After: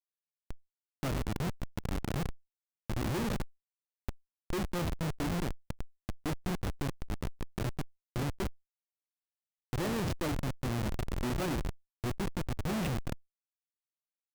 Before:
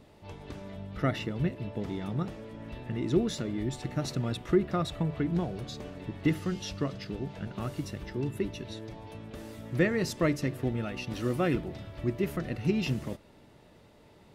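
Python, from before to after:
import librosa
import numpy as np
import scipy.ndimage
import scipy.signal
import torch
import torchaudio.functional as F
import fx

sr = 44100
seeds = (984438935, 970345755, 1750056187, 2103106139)

y = fx.differentiator(x, sr, at=(3.42, 4.49))
y = fx.rev_spring(y, sr, rt60_s=1.2, pass_ms=(59,), chirp_ms=70, drr_db=17.5)
y = fx.schmitt(y, sr, flips_db=-30.0)
y = fx.env_flatten(y, sr, amount_pct=50)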